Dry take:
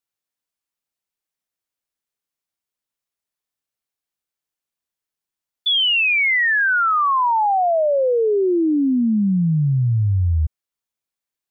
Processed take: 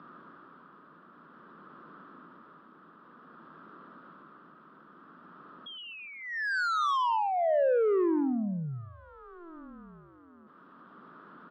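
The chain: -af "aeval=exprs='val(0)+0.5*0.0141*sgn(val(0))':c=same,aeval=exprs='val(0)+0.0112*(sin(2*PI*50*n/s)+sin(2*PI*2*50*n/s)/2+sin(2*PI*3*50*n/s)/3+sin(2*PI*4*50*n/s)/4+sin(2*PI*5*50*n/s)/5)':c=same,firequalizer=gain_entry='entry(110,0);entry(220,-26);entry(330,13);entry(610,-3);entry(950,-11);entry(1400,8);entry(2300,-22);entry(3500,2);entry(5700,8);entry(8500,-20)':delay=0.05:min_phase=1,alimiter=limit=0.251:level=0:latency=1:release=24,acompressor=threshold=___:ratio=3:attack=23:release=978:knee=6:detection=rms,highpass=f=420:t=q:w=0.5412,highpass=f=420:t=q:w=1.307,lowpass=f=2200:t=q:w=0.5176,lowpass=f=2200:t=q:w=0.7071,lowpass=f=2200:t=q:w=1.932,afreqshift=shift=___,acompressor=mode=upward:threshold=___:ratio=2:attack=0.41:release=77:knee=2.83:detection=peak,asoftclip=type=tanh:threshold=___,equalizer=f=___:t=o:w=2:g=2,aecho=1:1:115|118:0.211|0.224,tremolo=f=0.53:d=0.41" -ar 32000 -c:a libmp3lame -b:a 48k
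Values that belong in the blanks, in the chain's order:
0.112, -170, 0.00708, 0.0708, 510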